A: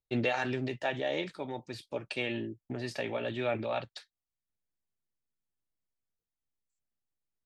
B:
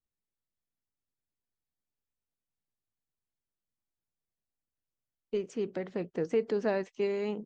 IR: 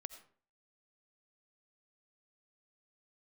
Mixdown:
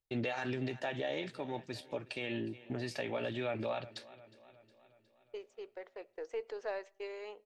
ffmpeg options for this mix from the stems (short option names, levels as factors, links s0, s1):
-filter_complex "[0:a]volume=0.891,asplit=2[s0][s1];[s1]volume=0.0794[s2];[1:a]highpass=f=470:w=0.5412,highpass=f=470:w=1.3066,aeval=exprs='0.141*(cos(1*acos(clip(val(0)/0.141,-1,1)))-cos(1*PI/2))+0.002*(cos(8*acos(clip(val(0)/0.141,-1,1)))-cos(8*PI/2))':c=same,agate=range=0.0224:threshold=0.0112:ratio=3:detection=peak,volume=0.398,asplit=2[s3][s4];[s4]volume=0.282[s5];[2:a]atrim=start_sample=2205[s6];[s5][s6]afir=irnorm=-1:irlink=0[s7];[s2]aecho=0:1:362|724|1086|1448|1810|2172|2534|2896:1|0.56|0.314|0.176|0.0983|0.0551|0.0308|0.0173[s8];[s0][s3][s7][s8]amix=inputs=4:normalize=0,alimiter=level_in=1.41:limit=0.0631:level=0:latency=1:release=94,volume=0.708"